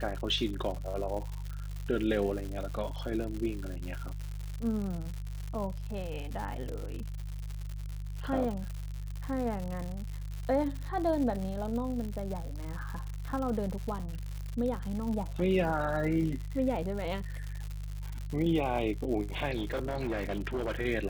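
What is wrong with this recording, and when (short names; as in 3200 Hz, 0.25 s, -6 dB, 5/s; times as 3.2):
crackle 170/s -36 dBFS
hum 50 Hz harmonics 3 -38 dBFS
19.56–20.72 clipped -28.5 dBFS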